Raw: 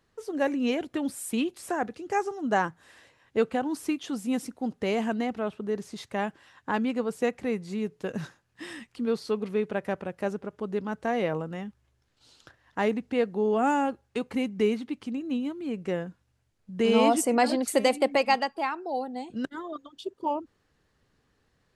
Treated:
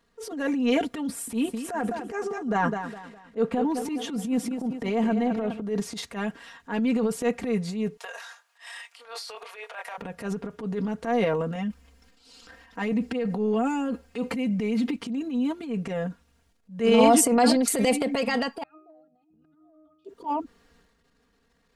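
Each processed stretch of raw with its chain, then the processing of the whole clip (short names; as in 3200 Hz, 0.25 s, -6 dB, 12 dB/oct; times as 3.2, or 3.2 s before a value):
1.07–5.61 high shelf 2300 Hz -7.5 dB + feedback echo 0.205 s, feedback 38%, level -13 dB
7.97–9.98 steep high-pass 630 Hz + doubler 23 ms -7.5 dB
11.55–14.96 comb 3.9 ms, depth 55% + negative-ratio compressor -28 dBFS
18.63–20.05 compressor 2:1, threshold -44 dBFS + octave resonator D#, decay 0.47 s
whole clip: comb 4.3 ms, depth 83%; transient shaper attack -10 dB, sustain +8 dB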